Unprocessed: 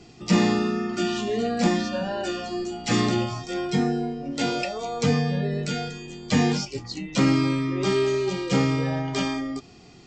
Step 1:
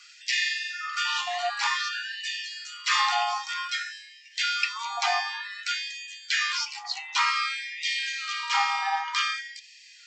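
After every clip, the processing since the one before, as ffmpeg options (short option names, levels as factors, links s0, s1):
-filter_complex "[0:a]acrossover=split=6100[s0][s1];[s1]acompressor=threshold=0.00158:ratio=4:attack=1:release=60[s2];[s0][s2]amix=inputs=2:normalize=0,highpass=f=550:t=q:w=4.9,afftfilt=real='re*gte(b*sr/1024,710*pow(1700/710,0.5+0.5*sin(2*PI*0.54*pts/sr)))':imag='im*gte(b*sr/1024,710*pow(1700/710,0.5+0.5*sin(2*PI*0.54*pts/sr)))':win_size=1024:overlap=0.75,volume=1.88"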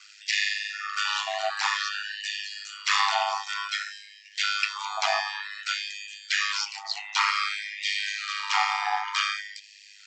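-af "aeval=exprs='val(0)*sin(2*PI*51*n/s)':c=same,volume=1.41"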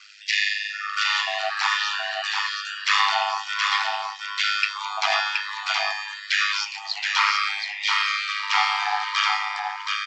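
-filter_complex "[0:a]highpass=740,lowpass=5200,asplit=2[s0][s1];[s1]aecho=0:1:723:0.631[s2];[s0][s2]amix=inputs=2:normalize=0,volume=1.58"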